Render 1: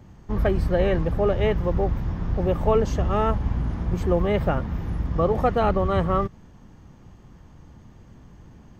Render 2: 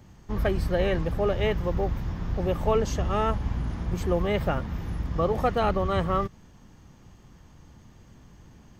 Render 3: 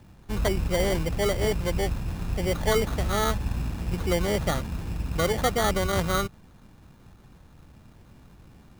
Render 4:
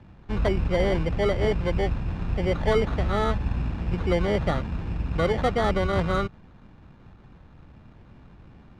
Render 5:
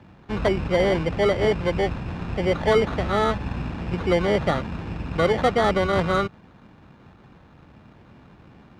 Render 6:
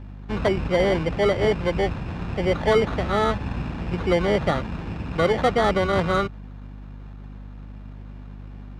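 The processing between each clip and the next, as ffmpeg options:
ffmpeg -i in.wav -af "highshelf=frequency=2200:gain=8.5,volume=-4dB" out.wav
ffmpeg -i in.wav -af "acrusher=samples=17:mix=1:aa=0.000001" out.wav
ffmpeg -i in.wav -filter_complex "[0:a]lowpass=3000,acrossover=split=780[link_01][link_02];[link_02]asoftclip=type=tanh:threshold=-26dB[link_03];[link_01][link_03]amix=inputs=2:normalize=0,volume=2dB" out.wav
ffmpeg -i in.wav -af "highpass=frequency=170:poles=1,volume=4.5dB" out.wav
ffmpeg -i in.wav -af "aeval=exprs='val(0)+0.0141*(sin(2*PI*50*n/s)+sin(2*PI*2*50*n/s)/2+sin(2*PI*3*50*n/s)/3+sin(2*PI*4*50*n/s)/4+sin(2*PI*5*50*n/s)/5)':channel_layout=same" out.wav

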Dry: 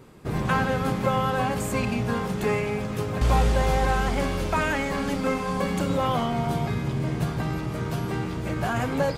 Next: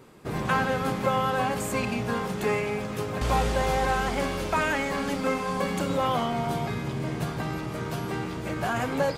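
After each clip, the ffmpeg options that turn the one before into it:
ffmpeg -i in.wav -af "lowshelf=frequency=160:gain=-8.5" out.wav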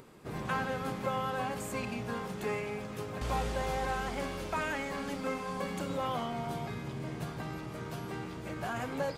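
ffmpeg -i in.wav -af "acompressor=mode=upward:threshold=-40dB:ratio=2.5,volume=-8.5dB" out.wav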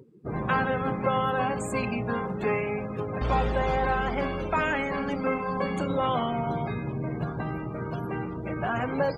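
ffmpeg -i in.wav -af "afftdn=noise_reduction=31:noise_floor=-45,volume=8dB" out.wav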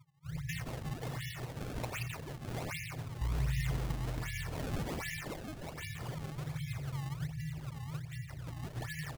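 ffmpeg -i in.wav -filter_complex "[0:a]asplit=8[link_01][link_02][link_03][link_04][link_05][link_06][link_07][link_08];[link_02]adelay=177,afreqshift=75,volume=-3dB[link_09];[link_03]adelay=354,afreqshift=150,volume=-8.7dB[link_10];[link_04]adelay=531,afreqshift=225,volume=-14.4dB[link_11];[link_05]adelay=708,afreqshift=300,volume=-20dB[link_12];[link_06]adelay=885,afreqshift=375,volume=-25.7dB[link_13];[link_07]adelay=1062,afreqshift=450,volume=-31.4dB[link_14];[link_08]adelay=1239,afreqshift=525,volume=-37.1dB[link_15];[link_01][link_09][link_10][link_11][link_12][link_13][link_14][link_15]amix=inputs=8:normalize=0,afftfilt=real='re*(1-between(b*sr/4096,170,1700))':imag='im*(1-between(b*sr/4096,170,1700))':win_size=4096:overlap=0.75,acrusher=samples=26:mix=1:aa=0.000001:lfo=1:lforange=41.6:lforate=1.3,volume=-5dB" out.wav

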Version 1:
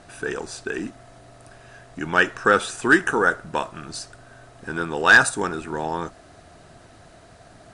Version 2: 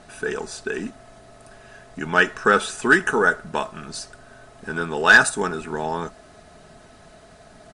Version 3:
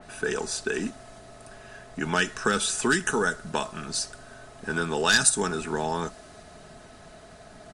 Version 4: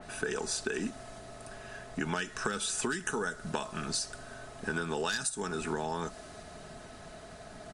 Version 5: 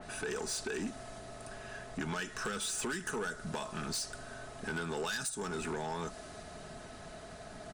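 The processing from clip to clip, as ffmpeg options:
ffmpeg -i in.wav -af "aecho=1:1:4.7:0.45" out.wav
ffmpeg -i in.wav -filter_complex "[0:a]acrossover=split=240|3000[link_01][link_02][link_03];[link_02]acompressor=threshold=-24dB:ratio=6[link_04];[link_01][link_04][link_03]amix=inputs=3:normalize=0,adynamicequalizer=threshold=0.00891:dfrequency=3400:dqfactor=0.7:tfrequency=3400:tqfactor=0.7:attack=5:release=100:ratio=0.375:range=3:mode=boostabove:tftype=highshelf" out.wav
ffmpeg -i in.wav -af "acompressor=threshold=-29dB:ratio=16" out.wav
ffmpeg -i in.wav -af "asoftclip=type=tanh:threshold=-31dB" out.wav

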